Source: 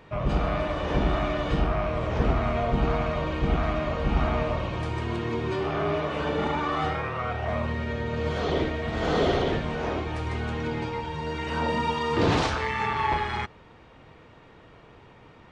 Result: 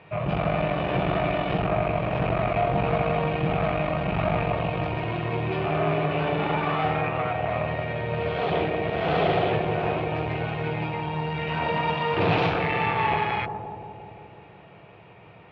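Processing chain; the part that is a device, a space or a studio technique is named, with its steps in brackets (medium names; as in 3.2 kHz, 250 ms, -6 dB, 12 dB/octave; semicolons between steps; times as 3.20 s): analogue delay pedal into a guitar amplifier (bucket-brigade echo 173 ms, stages 1024, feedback 73%, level -6 dB; valve stage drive 20 dB, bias 0.65; cabinet simulation 100–3700 Hz, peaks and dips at 110 Hz +6 dB, 170 Hz +7 dB, 240 Hz -9 dB, 700 Hz +7 dB, 2.5 kHz +9 dB); trim +2.5 dB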